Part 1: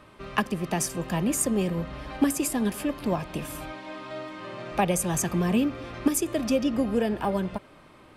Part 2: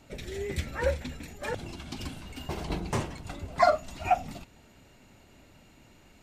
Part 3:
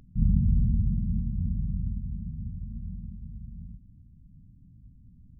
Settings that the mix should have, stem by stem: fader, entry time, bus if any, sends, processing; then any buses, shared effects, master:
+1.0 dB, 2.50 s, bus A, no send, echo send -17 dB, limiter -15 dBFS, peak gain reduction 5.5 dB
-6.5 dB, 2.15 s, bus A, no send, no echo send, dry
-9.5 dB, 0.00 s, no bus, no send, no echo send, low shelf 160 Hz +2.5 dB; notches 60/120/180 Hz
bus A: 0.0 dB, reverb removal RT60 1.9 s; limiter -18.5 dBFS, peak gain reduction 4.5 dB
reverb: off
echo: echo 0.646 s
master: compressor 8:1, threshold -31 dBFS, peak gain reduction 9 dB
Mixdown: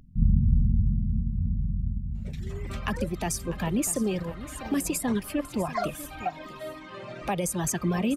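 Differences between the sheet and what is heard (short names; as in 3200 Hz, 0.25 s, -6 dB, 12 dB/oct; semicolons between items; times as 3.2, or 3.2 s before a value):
stem 3 -9.5 dB -> 0.0 dB; master: missing compressor 8:1, threshold -31 dBFS, peak gain reduction 9 dB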